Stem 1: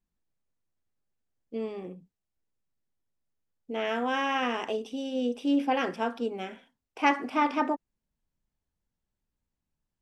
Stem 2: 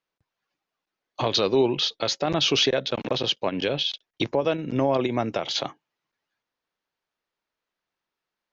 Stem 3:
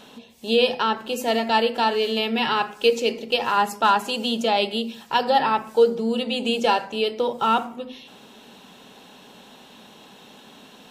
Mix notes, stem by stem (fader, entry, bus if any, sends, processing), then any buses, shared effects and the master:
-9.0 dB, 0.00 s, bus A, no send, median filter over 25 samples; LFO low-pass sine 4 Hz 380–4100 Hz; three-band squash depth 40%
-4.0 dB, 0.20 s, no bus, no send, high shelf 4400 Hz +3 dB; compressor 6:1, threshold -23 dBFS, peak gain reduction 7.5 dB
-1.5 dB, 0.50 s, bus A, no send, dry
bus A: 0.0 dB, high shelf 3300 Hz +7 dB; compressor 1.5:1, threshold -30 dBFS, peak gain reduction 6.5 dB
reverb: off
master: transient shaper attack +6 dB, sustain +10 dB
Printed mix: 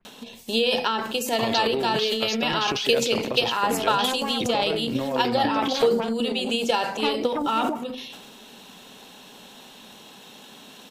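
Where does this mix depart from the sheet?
stem 1 -9.0 dB -> 0.0 dB; stem 3: entry 0.50 s -> 0.05 s

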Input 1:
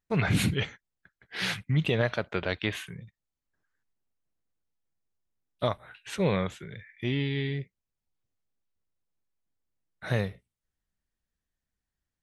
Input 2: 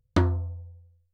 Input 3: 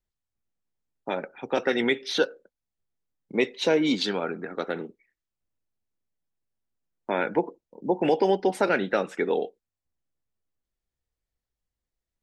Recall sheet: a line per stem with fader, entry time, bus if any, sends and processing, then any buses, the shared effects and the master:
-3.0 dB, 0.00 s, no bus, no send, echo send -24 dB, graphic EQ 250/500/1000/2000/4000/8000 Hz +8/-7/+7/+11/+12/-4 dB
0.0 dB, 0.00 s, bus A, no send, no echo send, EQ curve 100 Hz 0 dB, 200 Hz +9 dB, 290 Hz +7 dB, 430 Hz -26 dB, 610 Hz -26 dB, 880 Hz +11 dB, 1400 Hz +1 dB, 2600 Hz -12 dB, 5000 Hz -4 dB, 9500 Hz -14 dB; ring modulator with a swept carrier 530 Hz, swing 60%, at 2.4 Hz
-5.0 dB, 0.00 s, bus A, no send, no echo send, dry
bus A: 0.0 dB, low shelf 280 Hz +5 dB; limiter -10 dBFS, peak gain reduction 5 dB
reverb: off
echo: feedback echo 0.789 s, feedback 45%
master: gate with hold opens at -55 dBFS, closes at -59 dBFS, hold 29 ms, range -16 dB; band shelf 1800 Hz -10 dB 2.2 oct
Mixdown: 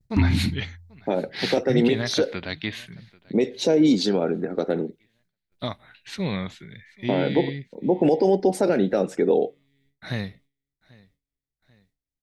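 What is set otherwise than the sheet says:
stem 2: missing ring modulator with a swept carrier 530 Hz, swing 60%, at 2.4 Hz; stem 3 -5.0 dB -> +6.5 dB

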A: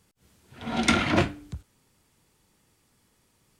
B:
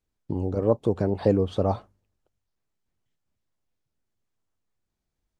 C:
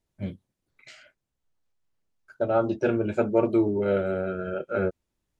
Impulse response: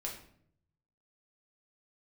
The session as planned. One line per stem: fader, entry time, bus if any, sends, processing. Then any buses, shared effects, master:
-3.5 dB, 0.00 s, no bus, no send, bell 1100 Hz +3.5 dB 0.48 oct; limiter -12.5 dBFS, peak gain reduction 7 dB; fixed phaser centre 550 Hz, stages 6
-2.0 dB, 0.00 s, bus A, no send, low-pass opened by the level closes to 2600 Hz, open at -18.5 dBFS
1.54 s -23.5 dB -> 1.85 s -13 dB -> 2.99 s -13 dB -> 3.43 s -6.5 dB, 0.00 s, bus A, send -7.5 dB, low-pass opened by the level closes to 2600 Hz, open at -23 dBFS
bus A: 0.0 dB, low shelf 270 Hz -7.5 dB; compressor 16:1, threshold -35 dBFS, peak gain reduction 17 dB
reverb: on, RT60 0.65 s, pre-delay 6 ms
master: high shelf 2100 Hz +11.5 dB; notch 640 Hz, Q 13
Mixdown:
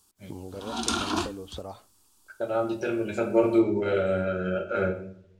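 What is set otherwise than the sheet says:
stem C -23.5 dB -> -12.5 dB; master: missing notch 640 Hz, Q 13

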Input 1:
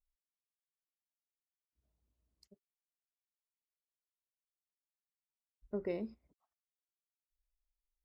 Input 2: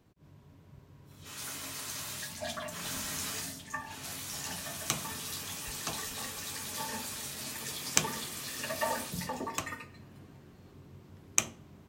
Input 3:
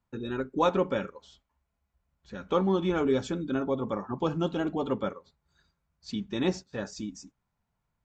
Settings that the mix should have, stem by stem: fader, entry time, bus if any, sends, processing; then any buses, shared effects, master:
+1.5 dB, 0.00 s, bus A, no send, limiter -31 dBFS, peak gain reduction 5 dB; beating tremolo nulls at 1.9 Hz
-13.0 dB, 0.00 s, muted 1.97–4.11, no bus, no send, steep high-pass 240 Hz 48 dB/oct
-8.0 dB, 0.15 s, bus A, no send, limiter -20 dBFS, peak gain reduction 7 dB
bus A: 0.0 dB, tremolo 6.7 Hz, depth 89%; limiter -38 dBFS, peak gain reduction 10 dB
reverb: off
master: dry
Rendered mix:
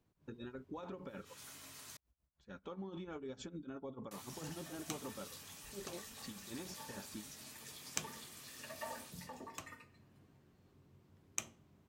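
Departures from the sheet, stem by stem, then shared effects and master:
stem 2: missing steep high-pass 240 Hz 48 dB/oct; stem 3: missing limiter -20 dBFS, peak gain reduction 7 dB

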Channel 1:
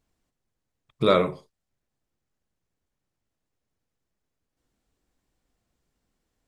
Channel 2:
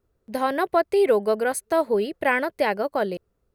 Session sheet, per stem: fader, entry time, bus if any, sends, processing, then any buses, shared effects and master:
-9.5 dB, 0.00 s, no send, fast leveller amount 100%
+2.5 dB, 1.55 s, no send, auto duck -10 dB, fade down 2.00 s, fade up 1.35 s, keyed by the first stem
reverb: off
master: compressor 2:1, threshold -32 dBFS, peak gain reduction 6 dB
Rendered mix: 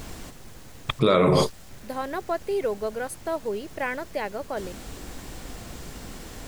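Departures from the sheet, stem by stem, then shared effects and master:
stem 1 -9.5 dB -> -2.0 dB; master: missing compressor 2:1, threshold -32 dBFS, peak gain reduction 6 dB

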